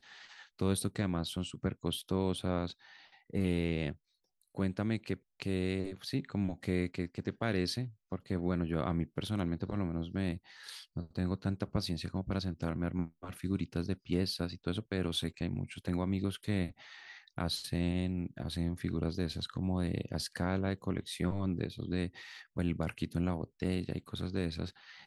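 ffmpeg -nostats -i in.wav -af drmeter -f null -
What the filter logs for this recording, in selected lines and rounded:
Channel 1: DR: 14.5
Overall DR: 14.5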